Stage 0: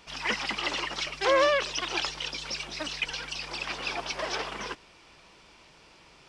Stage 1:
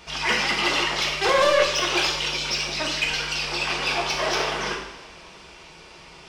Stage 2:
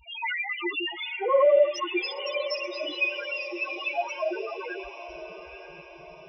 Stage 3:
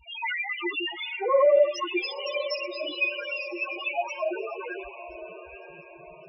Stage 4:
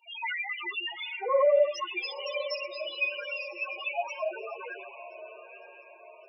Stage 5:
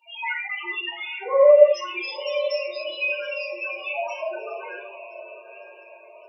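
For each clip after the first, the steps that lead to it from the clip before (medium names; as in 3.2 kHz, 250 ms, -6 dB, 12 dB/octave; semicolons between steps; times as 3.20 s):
saturation -23 dBFS, distortion -10 dB; two-slope reverb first 0.74 s, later 2.7 s, from -18 dB, DRR -1.5 dB; trim +6 dB
loudest bins only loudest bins 2; echo that smears into a reverb 970 ms, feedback 50%, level -12 dB; trim +4 dB
loudest bins only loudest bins 32
steep high-pass 450 Hz 36 dB/octave; trim -3 dB
simulated room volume 310 m³, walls furnished, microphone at 2.6 m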